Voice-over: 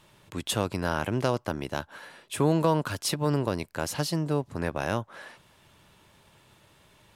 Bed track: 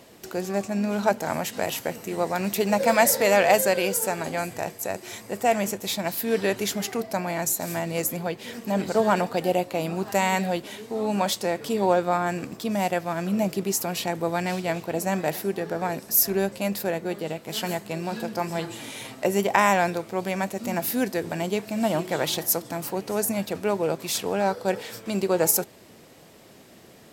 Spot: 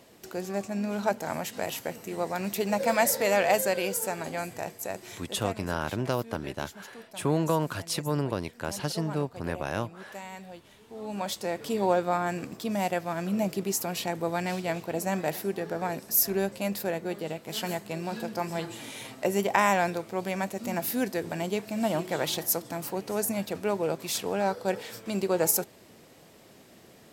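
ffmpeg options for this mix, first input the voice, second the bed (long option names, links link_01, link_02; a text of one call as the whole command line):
ffmpeg -i stem1.wav -i stem2.wav -filter_complex "[0:a]adelay=4850,volume=-2.5dB[link_01];[1:a]volume=10.5dB,afade=type=out:start_time=5.03:duration=0.53:silence=0.199526,afade=type=in:start_time=10.78:duration=0.93:silence=0.16788[link_02];[link_01][link_02]amix=inputs=2:normalize=0" out.wav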